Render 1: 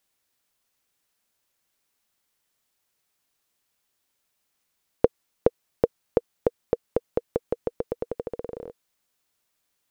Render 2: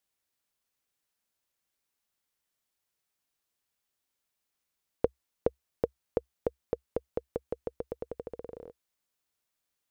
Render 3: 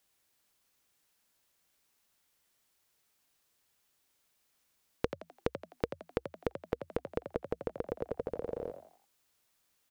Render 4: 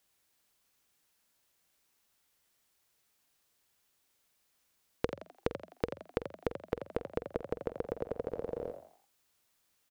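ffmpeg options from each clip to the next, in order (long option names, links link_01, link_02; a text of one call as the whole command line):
ffmpeg -i in.wav -af "equalizer=frequency=65:width_type=o:width=0.4:gain=5.5,volume=-8dB" out.wav
ffmpeg -i in.wav -filter_complex "[0:a]acompressor=threshold=-40dB:ratio=4,asplit=2[link_01][link_02];[link_02]asplit=4[link_03][link_04][link_05][link_06];[link_03]adelay=85,afreqshift=81,volume=-9.5dB[link_07];[link_04]adelay=170,afreqshift=162,volume=-17.7dB[link_08];[link_05]adelay=255,afreqshift=243,volume=-25.9dB[link_09];[link_06]adelay=340,afreqshift=324,volume=-34dB[link_10];[link_07][link_08][link_09][link_10]amix=inputs=4:normalize=0[link_11];[link_01][link_11]amix=inputs=2:normalize=0,volume=8dB" out.wav
ffmpeg -i in.wav -filter_complex "[0:a]asplit=2[link_01][link_02];[link_02]adelay=47,volume=-13dB[link_03];[link_01][link_03]amix=inputs=2:normalize=0" out.wav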